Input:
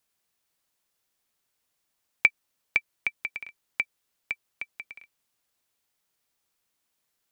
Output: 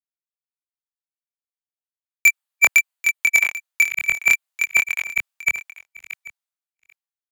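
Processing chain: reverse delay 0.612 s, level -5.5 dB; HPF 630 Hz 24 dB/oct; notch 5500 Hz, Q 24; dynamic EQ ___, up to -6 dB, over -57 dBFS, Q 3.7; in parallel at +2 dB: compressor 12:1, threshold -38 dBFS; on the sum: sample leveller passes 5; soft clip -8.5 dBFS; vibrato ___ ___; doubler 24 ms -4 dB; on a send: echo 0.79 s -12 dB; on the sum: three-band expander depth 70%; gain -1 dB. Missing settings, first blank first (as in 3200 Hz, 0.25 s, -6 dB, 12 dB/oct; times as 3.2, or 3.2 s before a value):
5800 Hz, 0.5 Hz, 10 cents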